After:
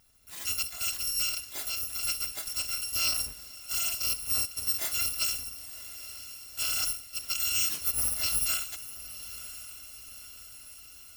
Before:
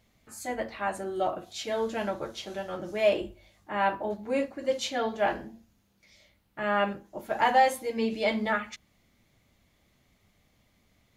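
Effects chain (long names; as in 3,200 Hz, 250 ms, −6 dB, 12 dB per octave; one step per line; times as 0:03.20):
samples in bit-reversed order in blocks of 256 samples
0:01.45–0:02.03: downward compressor, threshold −34 dBFS, peak gain reduction 9 dB
brickwall limiter −23 dBFS, peak gain reduction 11.5 dB
feedback delay with all-pass diffusion 992 ms, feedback 60%, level −14 dB
level +2.5 dB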